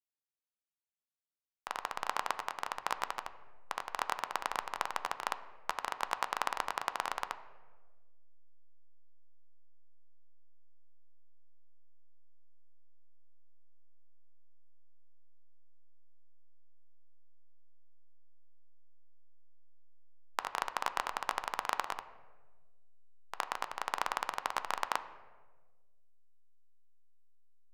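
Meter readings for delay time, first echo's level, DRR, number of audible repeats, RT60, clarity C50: no echo, no echo, 10.0 dB, no echo, 1.4 s, 13.0 dB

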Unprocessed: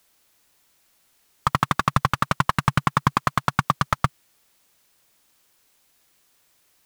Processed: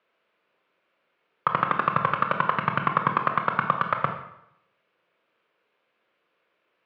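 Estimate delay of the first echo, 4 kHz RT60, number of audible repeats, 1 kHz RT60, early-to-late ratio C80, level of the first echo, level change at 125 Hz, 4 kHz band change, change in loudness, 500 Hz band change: no echo, 0.70 s, no echo, 0.75 s, 9.5 dB, no echo, -9.5 dB, -9.0 dB, -1.5 dB, +2.5 dB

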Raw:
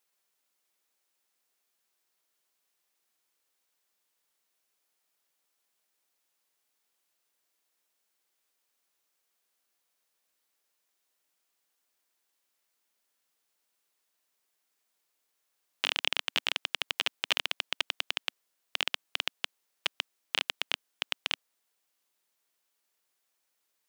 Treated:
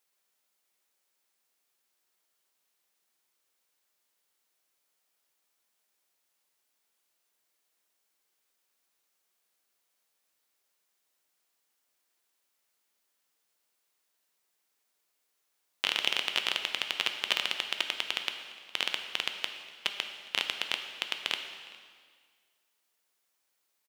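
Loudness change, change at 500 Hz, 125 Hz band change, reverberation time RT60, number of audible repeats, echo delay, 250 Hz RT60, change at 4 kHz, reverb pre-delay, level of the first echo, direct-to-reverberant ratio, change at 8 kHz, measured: +1.0 dB, +1.0 dB, no reading, 1.8 s, 1, 410 ms, 1.9 s, +1.0 dB, 5 ms, -23.0 dB, 5.5 dB, +1.0 dB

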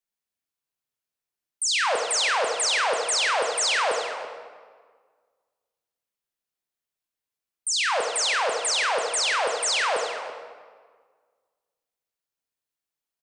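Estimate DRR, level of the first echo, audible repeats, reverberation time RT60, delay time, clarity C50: 1.5 dB, -13.5 dB, 1, 1.6 s, 336 ms, 3.0 dB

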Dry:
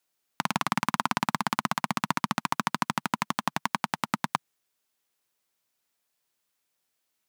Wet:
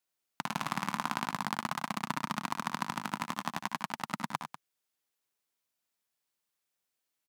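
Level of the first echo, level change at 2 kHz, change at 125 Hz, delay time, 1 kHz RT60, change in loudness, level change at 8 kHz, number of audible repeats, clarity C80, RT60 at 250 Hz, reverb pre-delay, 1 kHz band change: -12.0 dB, -6.5 dB, -6.5 dB, 61 ms, no reverb, -6.5 dB, -6.5 dB, 3, no reverb, no reverb, no reverb, -6.5 dB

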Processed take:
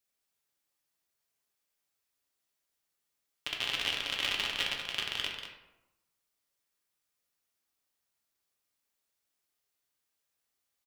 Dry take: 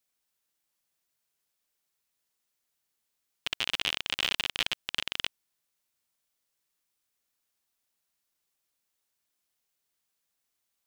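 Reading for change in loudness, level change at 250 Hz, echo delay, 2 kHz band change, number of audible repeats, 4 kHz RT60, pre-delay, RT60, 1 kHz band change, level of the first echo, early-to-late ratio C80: -1.5 dB, -1.5 dB, 189 ms, -1.5 dB, 1, 0.55 s, 3 ms, 0.95 s, -1.0 dB, -8.5 dB, 5.0 dB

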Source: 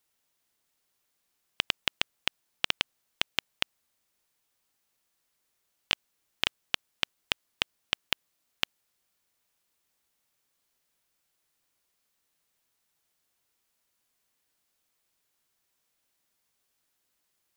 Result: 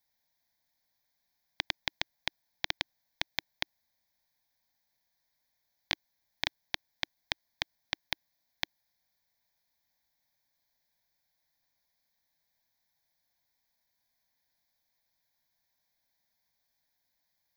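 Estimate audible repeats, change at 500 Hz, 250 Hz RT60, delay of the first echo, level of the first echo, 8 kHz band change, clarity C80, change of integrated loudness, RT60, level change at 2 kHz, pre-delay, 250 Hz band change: no echo, -4.0 dB, no reverb, no echo, no echo, -5.5 dB, no reverb, -5.0 dB, no reverb, -4.0 dB, no reverb, -4.5 dB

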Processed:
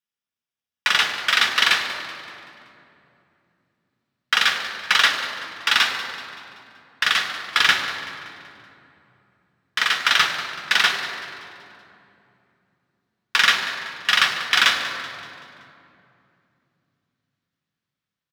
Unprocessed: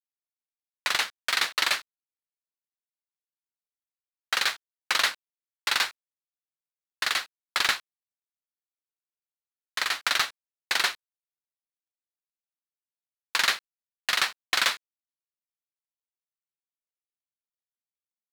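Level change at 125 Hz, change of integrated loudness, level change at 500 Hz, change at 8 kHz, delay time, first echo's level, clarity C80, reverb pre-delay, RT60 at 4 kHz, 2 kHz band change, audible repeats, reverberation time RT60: no reading, +7.0 dB, +5.0 dB, +2.5 dB, 190 ms, -14.5 dB, 7.0 dB, 3 ms, 1.8 s, +8.5 dB, 4, 2.8 s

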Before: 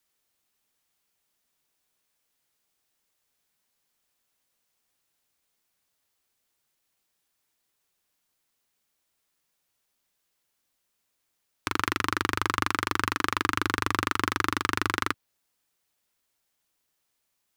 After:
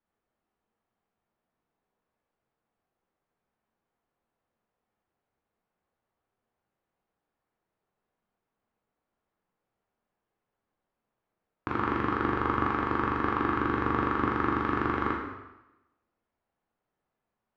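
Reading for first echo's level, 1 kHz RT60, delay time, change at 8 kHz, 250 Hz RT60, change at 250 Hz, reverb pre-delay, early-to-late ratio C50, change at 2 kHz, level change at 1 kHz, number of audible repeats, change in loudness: no echo, 1.0 s, no echo, under -25 dB, 0.95 s, +4.0 dB, 6 ms, 2.5 dB, -5.0 dB, 0.0 dB, no echo, -1.0 dB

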